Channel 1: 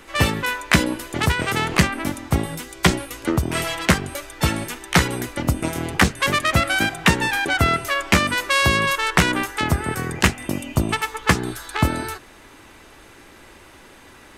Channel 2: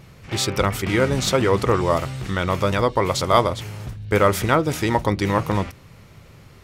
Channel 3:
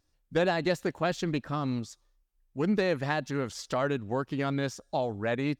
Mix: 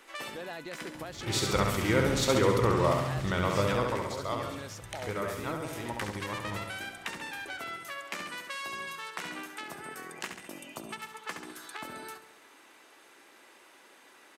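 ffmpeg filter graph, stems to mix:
-filter_complex "[0:a]highpass=230,volume=0.355,asplit=2[s0][s1];[s1]volume=0.119[s2];[1:a]adelay=950,volume=0.398,afade=t=out:st=3.59:d=0.49:silence=0.281838,asplit=2[s3][s4];[s4]volume=0.631[s5];[2:a]alimiter=limit=0.0708:level=0:latency=1:release=32,volume=1.06,asplit=2[s6][s7];[s7]apad=whole_len=633853[s8];[s0][s8]sidechaincompress=threshold=0.00891:ratio=8:attack=28:release=295[s9];[s9][s6]amix=inputs=2:normalize=0,equalizer=f=92:t=o:w=2.6:g=-12.5,acompressor=threshold=0.00891:ratio=2.5,volume=1[s10];[s2][s5]amix=inputs=2:normalize=0,aecho=0:1:68|136|204|272|340|408|476|544|612:1|0.59|0.348|0.205|0.121|0.0715|0.0422|0.0249|0.0147[s11];[s3][s10][s11]amix=inputs=3:normalize=0"

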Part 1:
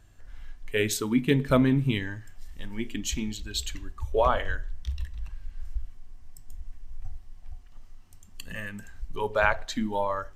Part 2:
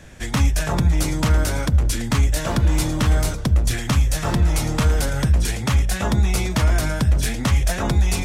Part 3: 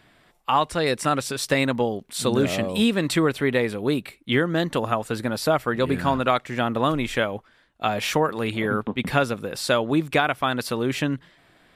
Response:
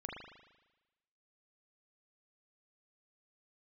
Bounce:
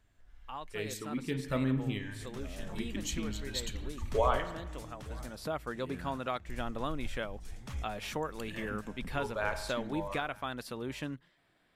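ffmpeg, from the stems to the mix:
-filter_complex "[0:a]dynaudnorm=f=490:g=9:m=3.76,volume=0.15,asplit=3[s0][s1][s2];[s0]atrim=end=4.44,asetpts=PTS-STARTPTS,afade=t=out:st=4.436:d=0.004:c=hsin[s3];[s1]atrim=start=4.44:end=6.49,asetpts=PTS-STARTPTS,volume=0[s4];[s2]atrim=start=6.49,asetpts=PTS-STARTPTS,afade=t=in:d=0.004:c=hsin[s5];[s3][s4][s5]concat=n=3:v=0:a=1,asplit=3[s6][s7][s8];[s7]volume=0.708[s9];[s8]volume=0.0944[s10];[1:a]adelay=2000,volume=0.126,asplit=2[s11][s12];[s12]volume=0.0668[s13];[2:a]volume=0.188,afade=t=in:st=5.2:d=0.38:silence=0.398107,asplit=2[s14][s15];[s15]apad=whole_len=451998[s16];[s11][s16]sidechaincompress=threshold=0.00398:ratio=12:attack=5.7:release=548[s17];[3:a]atrim=start_sample=2205[s18];[s9][s18]afir=irnorm=-1:irlink=0[s19];[s10][s13]amix=inputs=2:normalize=0,aecho=0:1:909:1[s20];[s6][s17][s14][s19][s20]amix=inputs=5:normalize=0"

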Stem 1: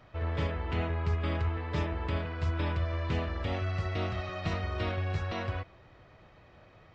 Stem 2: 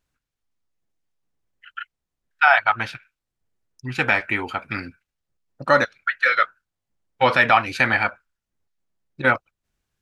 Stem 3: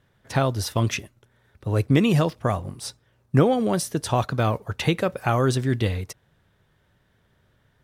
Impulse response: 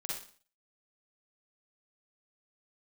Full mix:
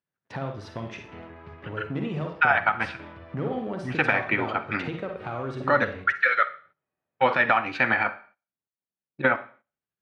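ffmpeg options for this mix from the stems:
-filter_complex "[0:a]adelay=400,volume=0.398,asplit=2[s0][s1];[s1]volume=0.335[s2];[1:a]acompressor=threshold=0.126:ratio=3,tremolo=f=12:d=0.4,volume=1.12,asplit=2[s3][s4];[s4]volume=0.266[s5];[2:a]aeval=exprs='clip(val(0),-1,0.237)':c=same,volume=0.668,asplit=2[s6][s7];[s7]volume=0.299[s8];[s0][s6]amix=inputs=2:normalize=0,aeval=exprs='sgn(val(0))*max(abs(val(0))-0.00335,0)':c=same,acompressor=threshold=0.0224:ratio=10,volume=1[s9];[3:a]atrim=start_sample=2205[s10];[s2][s5][s8]amix=inputs=3:normalize=0[s11];[s11][s10]afir=irnorm=-1:irlink=0[s12];[s3][s9][s12]amix=inputs=3:normalize=0,agate=range=0.224:threshold=0.00251:ratio=16:detection=peak,highpass=140,lowpass=2600"

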